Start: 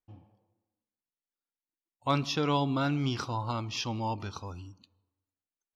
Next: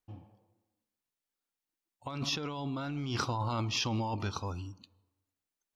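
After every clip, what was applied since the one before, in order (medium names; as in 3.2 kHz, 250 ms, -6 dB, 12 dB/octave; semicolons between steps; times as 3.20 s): compressor with a negative ratio -34 dBFS, ratio -1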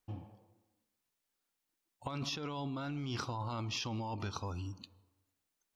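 compression 6:1, threshold -41 dBFS, peak gain reduction 12.5 dB; trim +4.5 dB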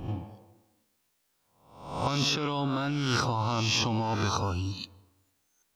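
reverse spectral sustain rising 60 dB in 0.70 s; trim +9 dB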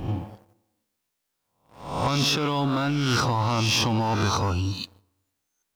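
waveshaping leveller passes 2; trim -1.5 dB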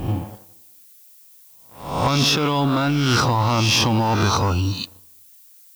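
added noise violet -54 dBFS; trim +5 dB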